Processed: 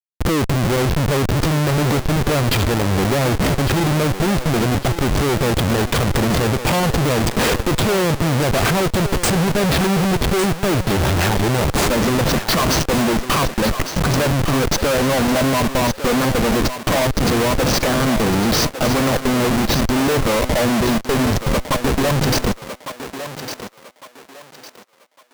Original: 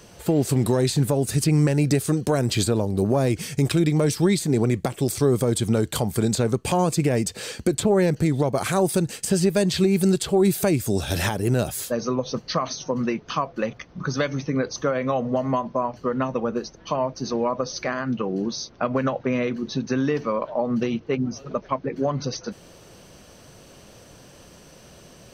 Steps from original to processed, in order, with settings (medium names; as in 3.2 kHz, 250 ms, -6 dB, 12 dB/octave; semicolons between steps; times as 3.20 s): low-pass that closes with the level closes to 2.6 kHz, closed at -16.5 dBFS; treble shelf 10 kHz +7.5 dB; in parallel at +2 dB: gain riding within 4 dB 0.5 s; on the sum: Schmitt trigger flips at -22.5 dBFS; on a send: thinning echo 1155 ms, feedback 32%, high-pass 360 Hz, level -9 dB